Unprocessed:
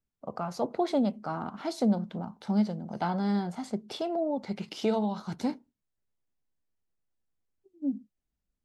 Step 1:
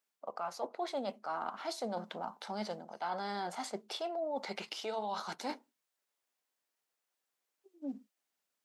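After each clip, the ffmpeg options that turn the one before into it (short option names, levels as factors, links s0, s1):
-af "highpass=620,areverse,acompressor=threshold=0.00708:ratio=5,areverse,volume=2.37"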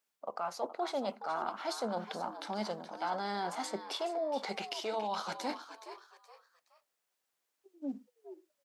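-filter_complex "[0:a]asplit=4[s0][s1][s2][s3];[s1]adelay=421,afreqshift=110,volume=0.266[s4];[s2]adelay=842,afreqshift=220,volume=0.0851[s5];[s3]adelay=1263,afreqshift=330,volume=0.0272[s6];[s0][s4][s5][s6]amix=inputs=4:normalize=0,volume=1.26"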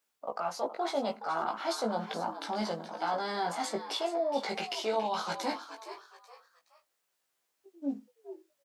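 -filter_complex "[0:a]asplit=2[s0][s1];[s1]adelay=18,volume=0.708[s2];[s0][s2]amix=inputs=2:normalize=0,volume=1.26"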